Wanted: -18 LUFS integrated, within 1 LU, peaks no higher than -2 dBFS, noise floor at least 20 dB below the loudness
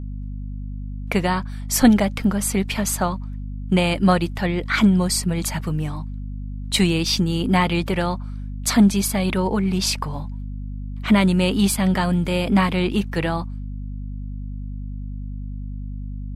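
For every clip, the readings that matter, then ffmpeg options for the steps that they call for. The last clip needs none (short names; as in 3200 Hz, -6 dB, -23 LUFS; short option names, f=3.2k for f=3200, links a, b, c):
hum 50 Hz; harmonics up to 250 Hz; hum level -28 dBFS; loudness -20.5 LUFS; peak -3.5 dBFS; loudness target -18.0 LUFS
-> -af "bandreject=f=50:t=h:w=6,bandreject=f=100:t=h:w=6,bandreject=f=150:t=h:w=6,bandreject=f=200:t=h:w=6,bandreject=f=250:t=h:w=6"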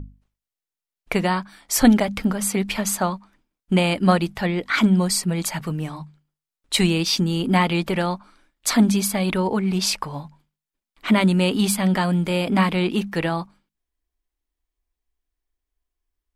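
hum none; loudness -21.0 LUFS; peak -4.0 dBFS; loudness target -18.0 LUFS
-> -af "volume=3dB,alimiter=limit=-2dB:level=0:latency=1"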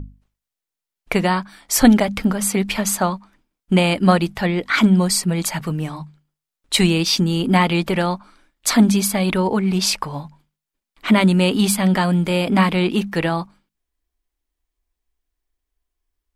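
loudness -18.0 LUFS; peak -2.0 dBFS; noise floor -86 dBFS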